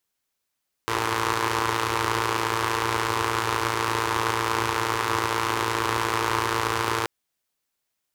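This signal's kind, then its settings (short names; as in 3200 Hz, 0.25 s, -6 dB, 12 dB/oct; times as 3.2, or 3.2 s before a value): four-cylinder engine model, steady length 6.18 s, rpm 3400, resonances 96/400/980 Hz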